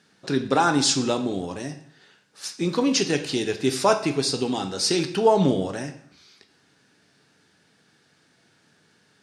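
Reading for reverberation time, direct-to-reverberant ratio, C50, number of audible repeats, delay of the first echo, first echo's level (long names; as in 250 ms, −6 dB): 0.65 s, 6.5 dB, 11.5 dB, no echo audible, no echo audible, no echo audible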